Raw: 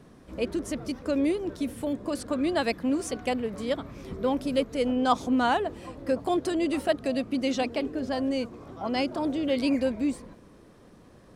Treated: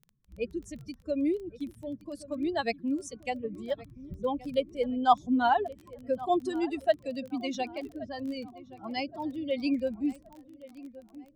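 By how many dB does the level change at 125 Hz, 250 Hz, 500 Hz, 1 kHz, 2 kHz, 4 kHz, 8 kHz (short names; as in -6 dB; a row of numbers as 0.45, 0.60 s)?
-7.5, -5.0, -3.5, +1.0, -4.0, -5.5, -8.5 dB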